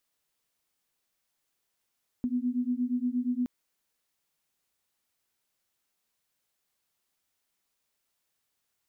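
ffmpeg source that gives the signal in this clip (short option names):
-f lavfi -i "aevalsrc='0.0335*(sin(2*PI*243*t)+sin(2*PI*251.5*t))':d=1.22:s=44100"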